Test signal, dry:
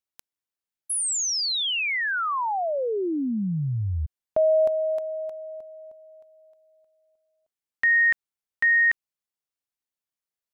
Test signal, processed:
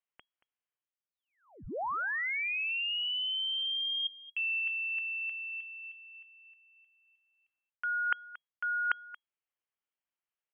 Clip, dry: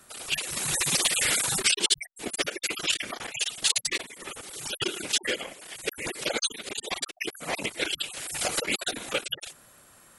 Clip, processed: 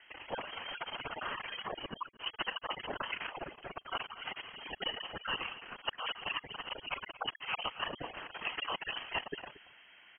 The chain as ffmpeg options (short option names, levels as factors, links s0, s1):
-af "areverse,acompressor=threshold=0.0224:ratio=5:attack=26:release=425:knee=6:detection=peak,areverse,aecho=1:1:229:0.133,lowpass=f=2800:t=q:w=0.5098,lowpass=f=2800:t=q:w=0.6013,lowpass=f=2800:t=q:w=0.9,lowpass=f=2800:t=q:w=2.563,afreqshift=-3300"